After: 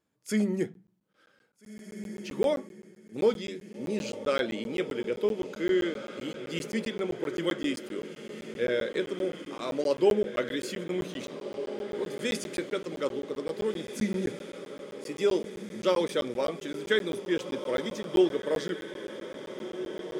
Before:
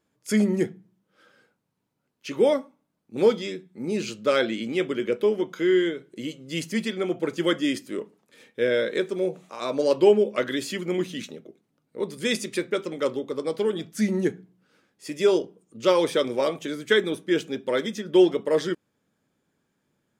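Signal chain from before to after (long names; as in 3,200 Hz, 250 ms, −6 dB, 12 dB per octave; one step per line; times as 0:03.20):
feedback delay with all-pass diffusion 1,756 ms, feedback 56%, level −10 dB
regular buffer underruns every 0.13 s, samples 512, zero, from 0:00.74
level −5.5 dB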